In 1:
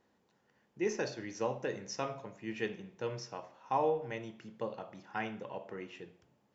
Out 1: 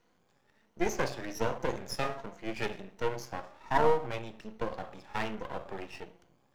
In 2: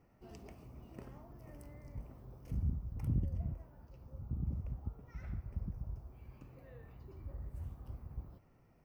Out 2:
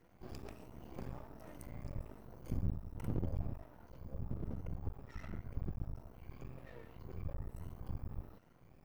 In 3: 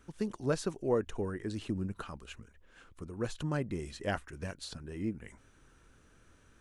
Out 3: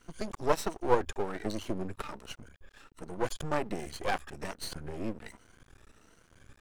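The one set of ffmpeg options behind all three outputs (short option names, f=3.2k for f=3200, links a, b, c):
-filter_complex "[0:a]afftfilt=real='re*pow(10,12/40*sin(2*PI*(1.9*log(max(b,1)*sr/1024/100)/log(2)-(1.3)*(pts-256)/sr)))':imag='im*pow(10,12/40*sin(2*PI*(1.9*log(max(b,1)*sr/1024/100)/log(2)-(1.3)*(pts-256)/sr)))':win_size=1024:overlap=0.75,acrossover=split=240[a][b];[a]acompressor=threshold=-40dB:ratio=2.5[c];[c][b]amix=inputs=2:normalize=0,aeval=exprs='max(val(0),0)':c=same,adynamicequalizer=threshold=0.00224:dfrequency=790:dqfactor=1.1:tfrequency=790:tqfactor=1.1:attack=5:release=100:ratio=0.375:range=1.5:mode=boostabove:tftype=bell,volume=5.5dB"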